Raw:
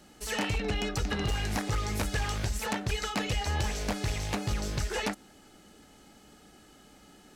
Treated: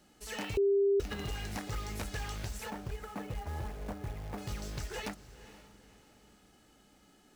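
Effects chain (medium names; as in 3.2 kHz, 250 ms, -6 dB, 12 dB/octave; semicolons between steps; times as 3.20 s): 2.70–4.38 s: low-pass 1.3 kHz 12 dB/octave; short-mantissa float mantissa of 2-bit; echo that smears into a reverb 487 ms, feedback 40%, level -15 dB; 0.57–1.00 s: bleep 398 Hz -15.5 dBFS; trim -8 dB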